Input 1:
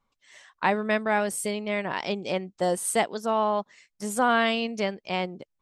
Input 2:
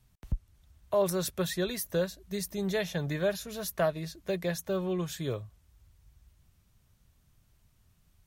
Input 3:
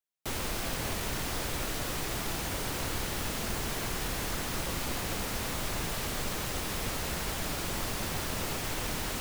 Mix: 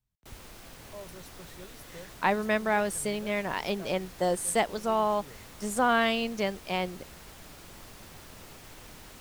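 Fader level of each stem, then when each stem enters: -2.0, -18.5, -14.5 dB; 1.60, 0.00, 0.00 s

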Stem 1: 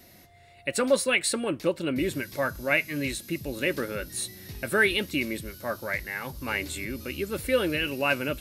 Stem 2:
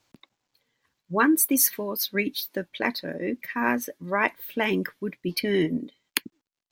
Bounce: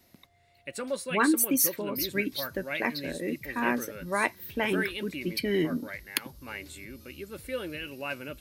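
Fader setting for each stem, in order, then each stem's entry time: -10.0, -3.5 dB; 0.00, 0.00 s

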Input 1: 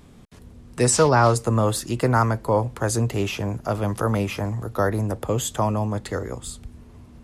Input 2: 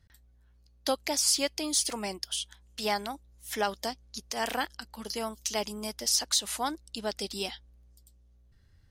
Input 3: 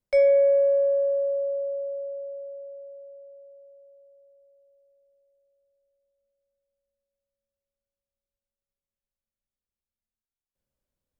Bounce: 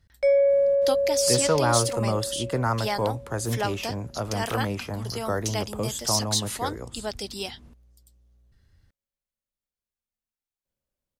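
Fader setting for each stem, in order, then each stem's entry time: -6.0, +1.0, -1.0 dB; 0.50, 0.00, 0.10 s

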